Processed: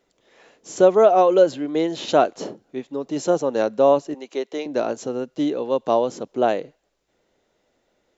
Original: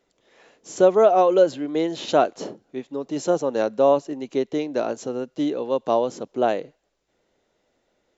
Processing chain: 4.14–4.66 HPF 450 Hz 12 dB/oct; gain +1.5 dB

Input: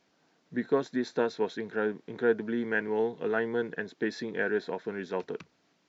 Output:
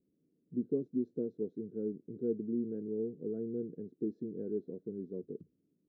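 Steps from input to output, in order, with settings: inverse Chebyshev low-pass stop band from 790 Hz, stop band 40 dB; gain -2.5 dB

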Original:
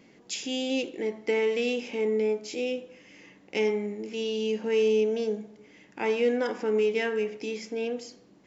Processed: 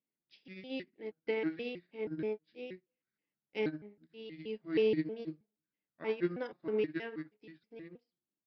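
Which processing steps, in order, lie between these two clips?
trilling pitch shifter -5.5 st, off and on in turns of 0.159 s; downsampling 11025 Hz; upward expander 2.5:1, over -46 dBFS; gain -4 dB

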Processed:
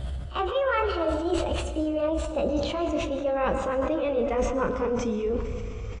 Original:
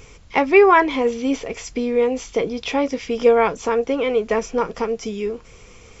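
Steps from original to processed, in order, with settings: gliding pitch shift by +6 st ending unshifted; LPF 1900 Hz 6 dB/oct; bell 64 Hz +14.5 dB 1.9 oct; reverse; compressor 6:1, threshold -29 dBFS, peak gain reduction 19 dB; reverse; doubler 30 ms -13 dB; pre-echo 42 ms -17 dB; on a send at -9 dB: reverb RT60 1.5 s, pre-delay 0.103 s; on the sum: sustainer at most 45 dB/s; gain +4 dB

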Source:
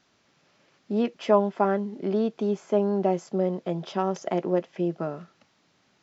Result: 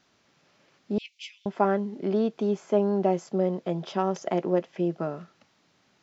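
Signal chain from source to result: 0.98–1.46 Chebyshev high-pass 2200 Hz, order 6

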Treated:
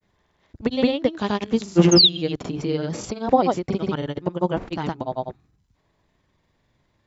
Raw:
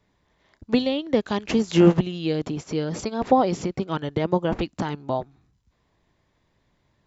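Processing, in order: painted sound fall, 1.93–2.14, 3100–6700 Hz -13 dBFS; grains, pitch spread up and down by 0 st; gain +2 dB

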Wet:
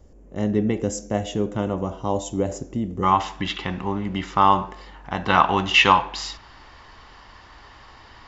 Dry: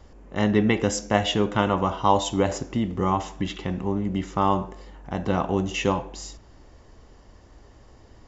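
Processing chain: band shelf 2000 Hz -9.5 dB 2.9 oct, from 3.02 s +9 dB, from 5.28 s +15.5 dB; gain -1 dB

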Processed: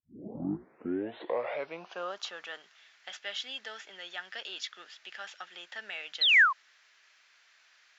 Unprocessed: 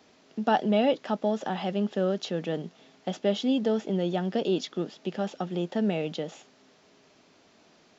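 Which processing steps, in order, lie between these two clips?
tape start at the beginning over 2.14 s; painted sound fall, 6.21–6.53, 990–4300 Hz -23 dBFS; high-pass sweep 250 Hz -> 1700 Hz, 0.12–2.78; gain -2.5 dB

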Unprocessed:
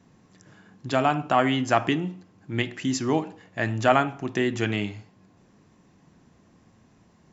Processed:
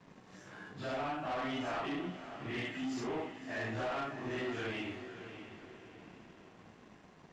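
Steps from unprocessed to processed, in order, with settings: phase scrambler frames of 0.2 s; vibrato 0.91 Hz 8.9 cents; tone controls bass -8 dB, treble -5 dB; compressor 2:1, threshold -49 dBFS, peak gain reduction 18 dB; sample leveller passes 3; air absorption 61 m; on a send: diffused feedback echo 0.591 s, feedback 44%, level -10.5 dB; on the sum: gain -5.5 dB

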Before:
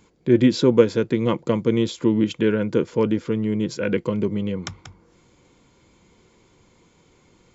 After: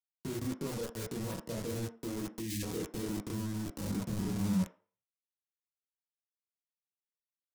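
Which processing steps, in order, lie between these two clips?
chorus voices 4, 0.4 Hz, delay 27 ms, depth 1.2 ms; low-pass sweep 1400 Hz -> 250 Hz, 0.12–3.75; compressor 3:1, threshold -28 dBFS, peak gain reduction 14 dB; sample gate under -31.5 dBFS; grains 0.112 s, spray 27 ms; soft clip -24 dBFS, distortion -17 dB; spectral delete 2.4–2.63, 360–1600 Hz; limiter -34.5 dBFS, peak gain reduction 11 dB; tone controls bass +8 dB, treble +14 dB; on a send at -5.5 dB: reverb RT60 0.45 s, pre-delay 3 ms; on the sum: three-band expander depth 40%

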